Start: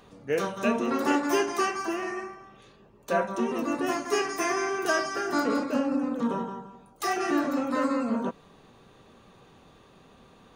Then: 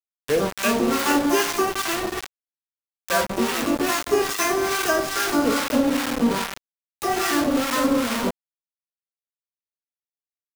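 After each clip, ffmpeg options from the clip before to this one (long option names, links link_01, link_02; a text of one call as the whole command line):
ffmpeg -i in.wav -filter_complex "[0:a]acrusher=bits=4:mix=0:aa=0.000001,acrossover=split=840[link_01][link_02];[link_01]aeval=exprs='val(0)*(1-0.7/2+0.7/2*cos(2*PI*2.4*n/s))':channel_layout=same[link_03];[link_02]aeval=exprs='val(0)*(1-0.7/2-0.7/2*cos(2*PI*2.4*n/s))':channel_layout=same[link_04];[link_03][link_04]amix=inputs=2:normalize=0,volume=8dB" out.wav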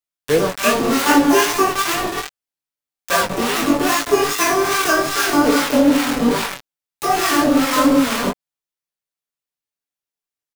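ffmpeg -i in.wav -af "aecho=1:1:6.9:0.42,flanger=delay=18:depth=5.2:speed=2.5,volume=7.5dB" out.wav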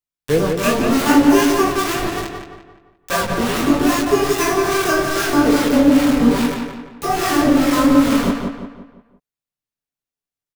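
ffmpeg -i in.wav -filter_complex "[0:a]lowshelf=frequency=240:gain=11.5,asplit=2[link_01][link_02];[link_02]adelay=173,lowpass=frequency=3300:poles=1,volume=-5dB,asplit=2[link_03][link_04];[link_04]adelay=173,lowpass=frequency=3300:poles=1,volume=0.44,asplit=2[link_05][link_06];[link_06]adelay=173,lowpass=frequency=3300:poles=1,volume=0.44,asplit=2[link_07][link_08];[link_08]adelay=173,lowpass=frequency=3300:poles=1,volume=0.44,asplit=2[link_09][link_10];[link_10]adelay=173,lowpass=frequency=3300:poles=1,volume=0.44[link_11];[link_03][link_05][link_07][link_09][link_11]amix=inputs=5:normalize=0[link_12];[link_01][link_12]amix=inputs=2:normalize=0,volume=-3.5dB" out.wav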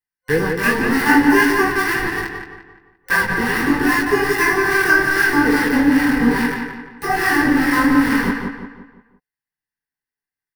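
ffmpeg -i in.wav -af "superequalizer=8b=0.251:9b=1.58:11b=3.98:13b=0.562:15b=0.355,volume=-2dB" out.wav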